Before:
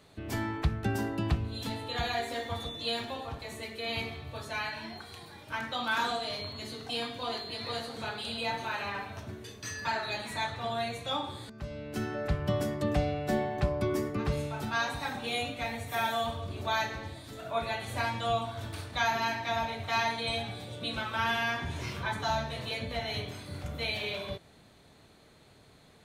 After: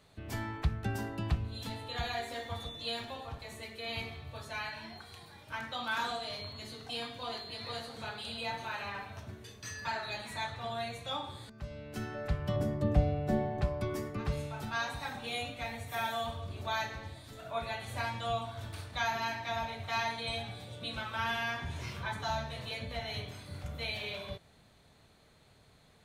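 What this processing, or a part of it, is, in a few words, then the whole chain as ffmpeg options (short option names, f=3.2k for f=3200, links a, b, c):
low shelf boost with a cut just above: -filter_complex "[0:a]lowshelf=f=67:g=5,equalizer=f=320:t=o:w=0.91:g=-4.5,asettb=1/sr,asplit=3[a][b][c];[a]atrim=end=12.564[d];[b]atrim=start=12.56:end=13.62,asetpts=PTS-STARTPTS,afade=t=in:d=0.004:c=qsin,afade=t=out:st=1.056:d=0.004:c=qsin,tiltshelf=f=900:g=6.5[e];[c]atrim=start=13.616[f];[d][e]acrossfade=d=0.004:c1=hsin:c2=qsin[g];[g][f]acrossfade=d=0.004:c1=qsin:c2=hsin,volume=-4dB"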